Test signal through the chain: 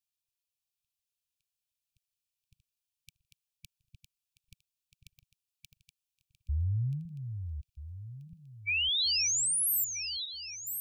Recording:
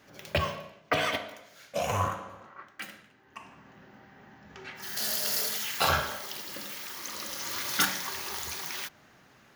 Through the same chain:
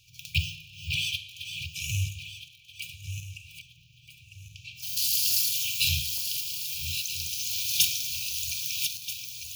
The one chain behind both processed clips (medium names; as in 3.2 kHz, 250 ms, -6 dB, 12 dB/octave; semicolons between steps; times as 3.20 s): backward echo that repeats 641 ms, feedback 52%, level -8 dB; brick-wall FIR band-stop 150–2300 Hz; trim +5 dB